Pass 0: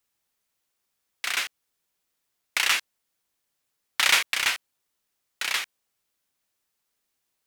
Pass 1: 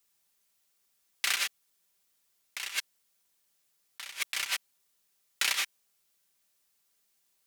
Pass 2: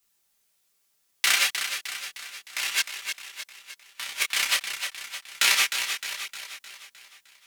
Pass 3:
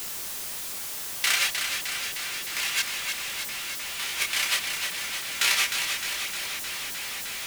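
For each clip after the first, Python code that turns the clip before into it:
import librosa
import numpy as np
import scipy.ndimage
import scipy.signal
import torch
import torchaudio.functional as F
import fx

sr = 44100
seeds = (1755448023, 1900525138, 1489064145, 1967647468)

y1 = fx.high_shelf(x, sr, hz=3100.0, db=7.0)
y1 = y1 + 0.39 * np.pad(y1, (int(5.1 * sr / 1000.0), 0))[:len(y1)]
y1 = fx.over_compress(y1, sr, threshold_db=-25.0, ratio=-0.5)
y1 = y1 * librosa.db_to_amplitude(-6.5)
y2 = fx.leveller(y1, sr, passes=1)
y2 = fx.echo_feedback(y2, sr, ms=307, feedback_pct=53, wet_db=-8.0)
y2 = fx.detune_double(y2, sr, cents=11)
y2 = y2 * librosa.db_to_amplitude(8.5)
y3 = y2 + 0.5 * 10.0 ** (-24.5 / 20.0) * np.sign(y2)
y3 = y3 * librosa.db_to_amplitude(-4.0)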